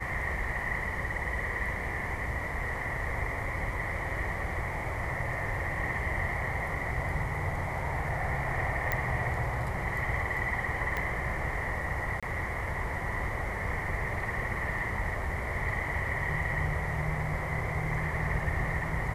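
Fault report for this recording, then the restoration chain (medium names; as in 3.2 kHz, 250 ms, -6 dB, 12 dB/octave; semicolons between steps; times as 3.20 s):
8.92 s: pop -14 dBFS
10.97 s: pop -18 dBFS
12.20–12.23 s: dropout 26 ms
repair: de-click; interpolate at 12.20 s, 26 ms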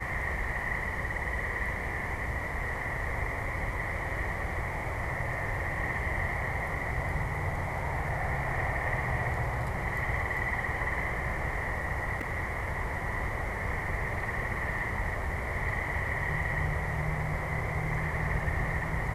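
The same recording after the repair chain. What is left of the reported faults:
10.97 s: pop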